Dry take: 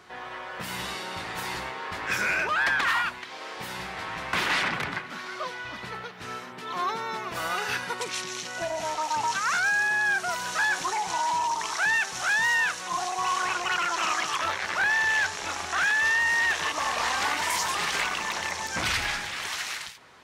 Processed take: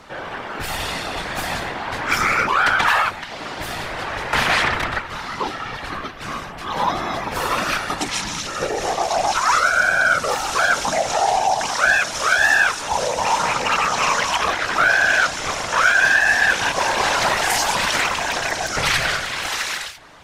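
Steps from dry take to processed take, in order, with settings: whisperiser; frequency shift -170 Hz; gain +8 dB

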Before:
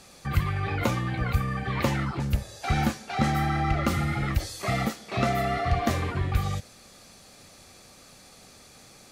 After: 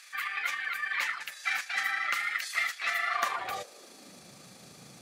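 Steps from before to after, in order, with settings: high-pass sweep 1800 Hz -> 150 Hz, 5.47–7.85; granular stretch 0.55×, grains 76 ms

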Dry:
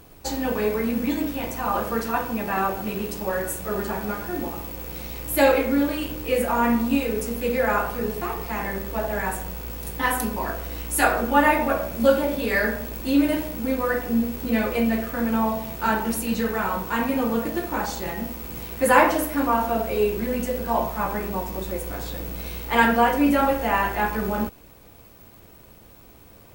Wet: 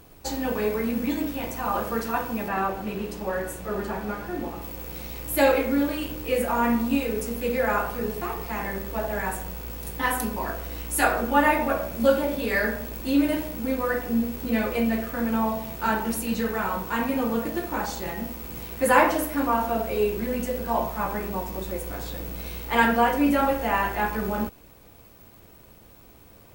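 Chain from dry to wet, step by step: 2.48–4.62 high shelf 6000 Hz -8.5 dB; gain -2 dB

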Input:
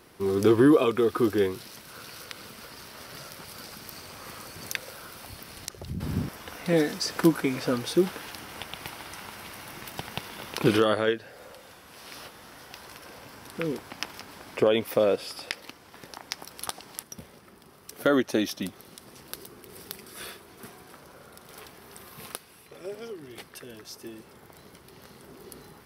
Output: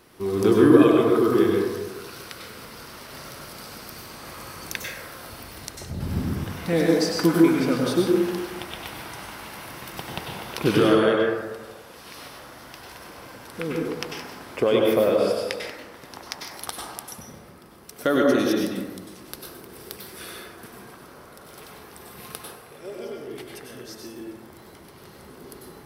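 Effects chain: plate-style reverb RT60 1.3 s, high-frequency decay 0.35×, pre-delay 85 ms, DRR -1.5 dB

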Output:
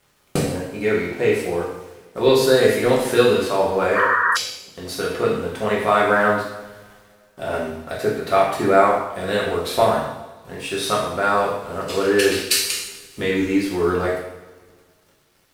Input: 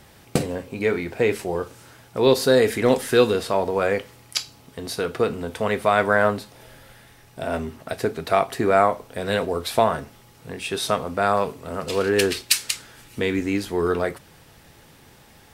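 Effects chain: crossover distortion -47 dBFS; two-slope reverb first 0.78 s, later 2.1 s, DRR -5 dB; painted sound noise, 3.95–4.37, 930–1900 Hz -15 dBFS; gain -3 dB

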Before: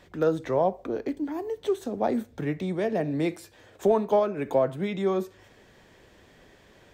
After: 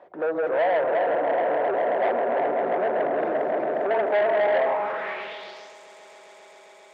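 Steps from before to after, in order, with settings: regenerating reverse delay 0.172 s, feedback 66%, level -1 dB; swelling echo 0.134 s, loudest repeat 5, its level -10 dB; overdrive pedal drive 23 dB, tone 1200 Hz, clips at -10 dBFS; band-pass sweep 660 Hz -> 7700 Hz, 4.56–5.78; core saturation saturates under 1000 Hz

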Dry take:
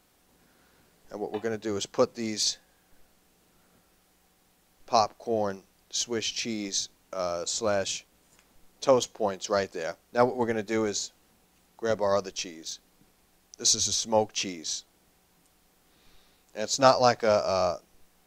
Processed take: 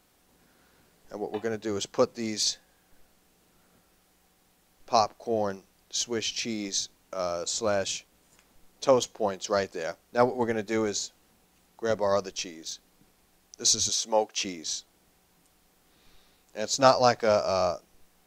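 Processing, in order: 13.89–14.45 HPF 320 Hz 12 dB/oct

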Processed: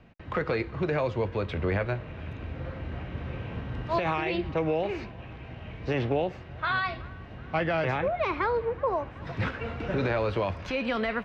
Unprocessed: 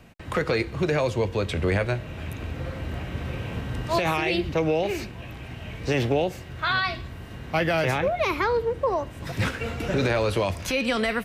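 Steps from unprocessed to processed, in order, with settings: air absorption 220 m; band-limited delay 0.376 s, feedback 79%, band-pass 1200 Hz, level -21 dB; dynamic EQ 1100 Hz, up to +3 dB, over -41 dBFS, Q 1; gain -4 dB

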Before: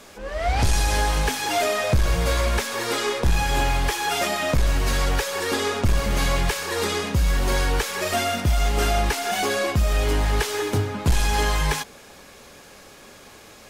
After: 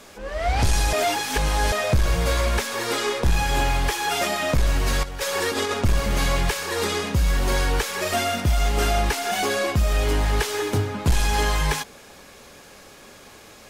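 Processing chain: 0.93–1.72 reverse; 5.03–5.74 negative-ratio compressor -25 dBFS, ratio -0.5

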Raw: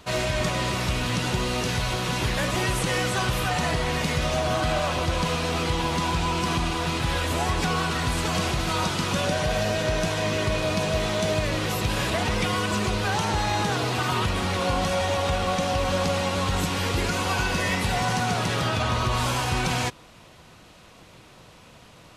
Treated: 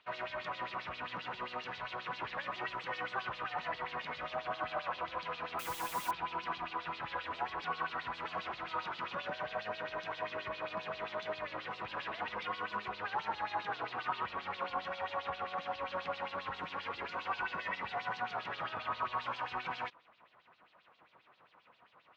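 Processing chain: tape spacing loss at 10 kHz 38 dB; LFO band-pass sine 7.5 Hz 990–4300 Hz; 5.59–6.11 requantised 8-bit, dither triangular; gain +1 dB

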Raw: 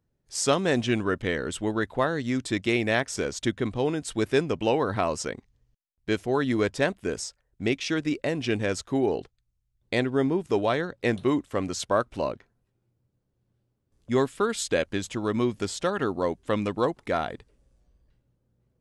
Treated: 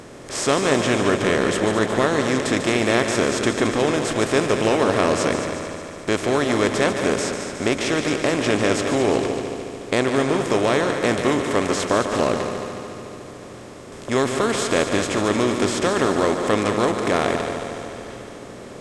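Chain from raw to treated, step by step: per-bin compression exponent 0.4; multi-head echo 73 ms, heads second and third, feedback 65%, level -9 dB; gain -1 dB

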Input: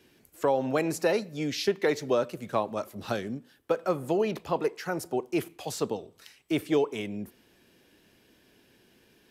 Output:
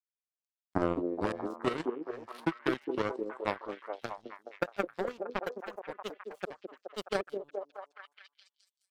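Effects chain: speed glide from 54% -> 155%; power-law curve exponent 3; delay with a stepping band-pass 0.211 s, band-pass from 340 Hz, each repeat 0.7 oct, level -1 dB; gain +2 dB

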